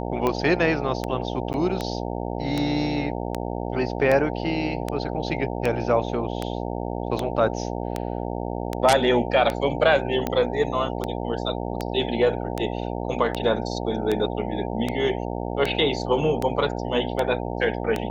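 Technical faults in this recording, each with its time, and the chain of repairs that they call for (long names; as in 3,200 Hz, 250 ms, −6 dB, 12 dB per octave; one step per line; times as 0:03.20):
mains buzz 60 Hz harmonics 15 −29 dBFS
scratch tick 78 rpm −11 dBFS
0:01.53–0:01.54: drop-out 9.9 ms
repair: click removal
hum removal 60 Hz, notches 15
repair the gap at 0:01.53, 9.9 ms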